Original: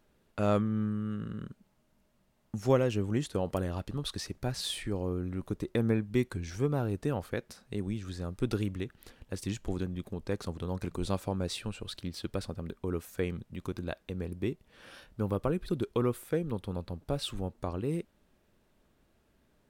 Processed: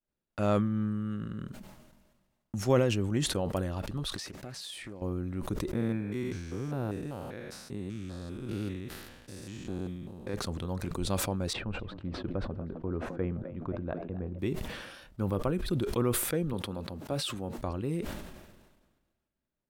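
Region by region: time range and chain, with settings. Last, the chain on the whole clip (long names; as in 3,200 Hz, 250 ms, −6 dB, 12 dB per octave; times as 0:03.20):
0:04.16–0:05.02: high-pass filter 210 Hz 6 dB per octave + downward compressor 12 to 1, threshold −38 dBFS + highs frequency-modulated by the lows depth 0.34 ms
0:05.73–0:10.34: spectrum averaged block by block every 200 ms + low-shelf EQ 74 Hz −9 dB
0:11.53–0:14.39: low-pass filter 1,200 Hz + echo with shifted repeats 259 ms, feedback 44%, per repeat +76 Hz, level −15 dB
0:16.53–0:17.58: high-pass filter 120 Hz + notch filter 160 Hz, Q 5
whole clip: notch filter 440 Hz, Q 12; downward expander −55 dBFS; level that may fall only so fast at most 42 dB per second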